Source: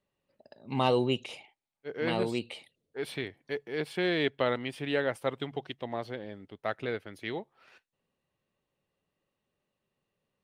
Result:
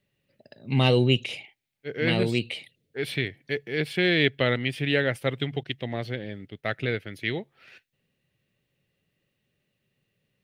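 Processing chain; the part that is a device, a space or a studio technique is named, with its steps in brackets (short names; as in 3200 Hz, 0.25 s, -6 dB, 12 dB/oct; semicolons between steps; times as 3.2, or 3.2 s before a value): presence and air boost (bell 3000 Hz +3 dB 1.7 oct; high shelf 10000 Hz +4 dB); 5.63–7.39 expander -49 dBFS; graphic EQ 125/1000/2000/8000 Hz +8/-11/+5/-3 dB; gain +5 dB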